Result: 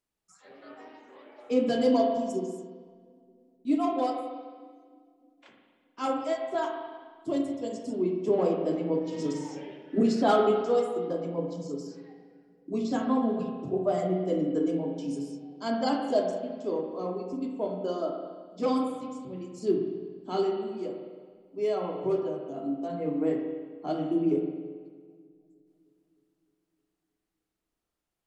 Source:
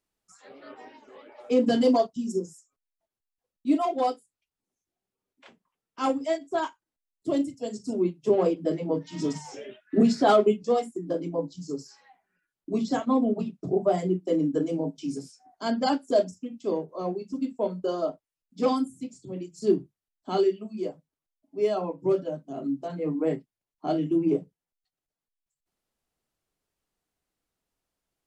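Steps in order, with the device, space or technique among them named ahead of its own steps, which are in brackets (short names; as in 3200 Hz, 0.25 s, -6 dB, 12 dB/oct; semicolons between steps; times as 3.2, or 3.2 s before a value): dub delay into a spring reverb (darkening echo 0.308 s, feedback 64%, low-pass 870 Hz, level -23.5 dB; spring tank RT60 1.5 s, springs 35/54 ms, chirp 40 ms, DRR 2 dB); gain -4 dB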